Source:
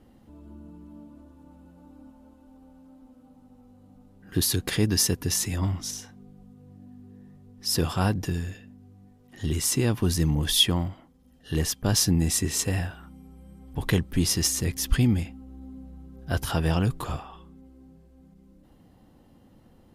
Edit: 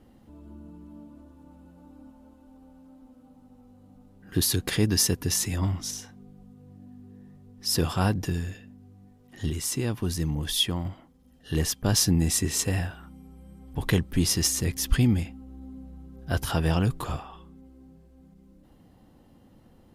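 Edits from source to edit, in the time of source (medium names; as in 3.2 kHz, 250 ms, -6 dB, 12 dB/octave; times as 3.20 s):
9.50–10.85 s: gain -4.5 dB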